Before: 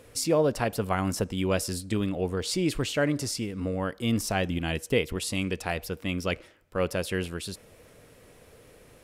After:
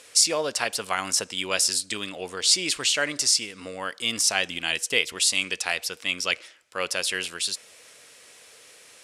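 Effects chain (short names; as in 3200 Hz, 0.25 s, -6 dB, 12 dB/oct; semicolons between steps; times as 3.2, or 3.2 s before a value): weighting filter ITU-R 468; gain +1.5 dB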